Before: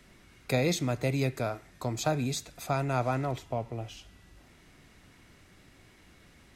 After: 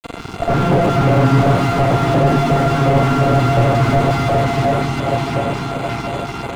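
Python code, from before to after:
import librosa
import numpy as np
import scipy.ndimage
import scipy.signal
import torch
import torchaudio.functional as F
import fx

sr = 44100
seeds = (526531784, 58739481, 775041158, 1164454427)

p1 = np.r_[np.sort(x[:len(x) // 64 * 64].reshape(-1, 64), axis=1).ravel(), x[len(x) // 64 * 64:]]
p2 = fx.granulator(p1, sr, seeds[0], grain_ms=100.0, per_s=20.0, spray_ms=100.0, spread_st=0)
p3 = fx.echo_split(p2, sr, split_hz=910.0, low_ms=773, high_ms=283, feedback_pct=52, wet_db=-14)
p4 = fx.fuzz(p3, sr, gain_db=53.0, gate_db=-56.0)
p5 = p3 + (p4 * librosa.db_to_amplitude(-4.0))
p6 = scipy.signal.sosfilt(scipy.signal.butter(2, 7900.0, 'lowpass', fs=sr, output='sos'), p5)
p7 = fx.low_shelf(p6, sr, hz=64.0, db=-12.0)
p8 = fx.notch(p7, sr, hz=1700.0, q=5.6)
p9 = p8 + fx.echo_opening(p8, sr, ms=149, hz=750, octaves=1, feedback_pct=70, wet_db=-3, dry=0)
p10 = fx.filter_lfo_notch(p9, sr, shape='square', hz=2.8, low_hz=550.0, high_hz=5300.0, q=1.3)
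p11 = fx.slew_limit(p10, sr, full_power_hz=82.0)
y = p11 * librosa.db_to_amplitude(5.5)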